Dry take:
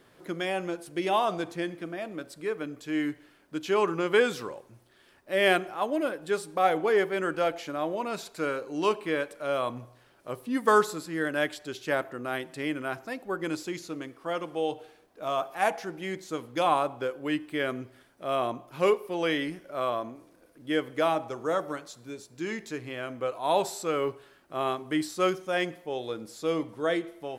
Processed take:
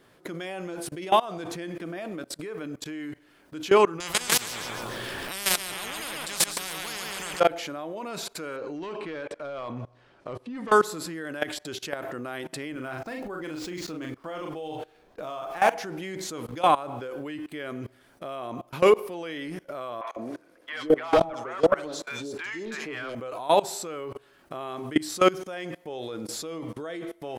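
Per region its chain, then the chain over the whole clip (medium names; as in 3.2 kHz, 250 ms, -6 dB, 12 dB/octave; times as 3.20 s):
4.00–7.40 s: feedback delay 139 ms, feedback 36%, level -5 dB + spectrum-flattening compressor 10:1
8.56–10.72 s: compression 2:1, threshold -31 dBFS + overload inside the chain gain 27.5 dB + distance through air 110 m
12.72–15.78 s: median filter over 5 samples + bass shelf 65 Hz +9.5 dB + doubling 39 ms -4.5 dB
20.01–23.15 s: treble shelf 5.3 kHz -4.5 dB + overdrive pedal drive 17 dB, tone 4.1 kHz, clips at -13.5 dBFS + three bands offset in time mids, highs, lows 60/150 ms, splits 750/3100 Hz
whole clip: level held to a coarse grid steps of 24 dB; loudness maximiser +21.5 dB; trim -8.5 dB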